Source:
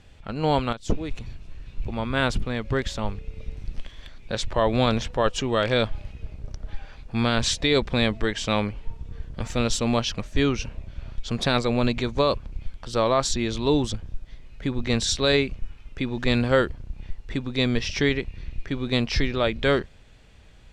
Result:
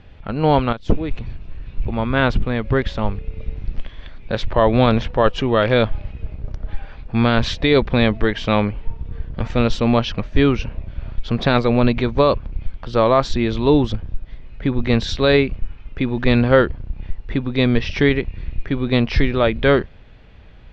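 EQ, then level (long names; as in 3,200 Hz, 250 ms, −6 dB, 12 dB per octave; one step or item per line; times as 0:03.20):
high-frequency loss of the air 260 metres
+7.5 dB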